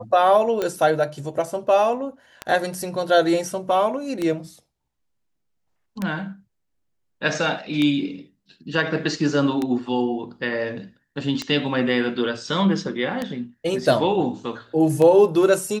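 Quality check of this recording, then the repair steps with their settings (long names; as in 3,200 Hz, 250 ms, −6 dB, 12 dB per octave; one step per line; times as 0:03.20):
scratch tick 33 1/3 rpm −11 dBFS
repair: click removal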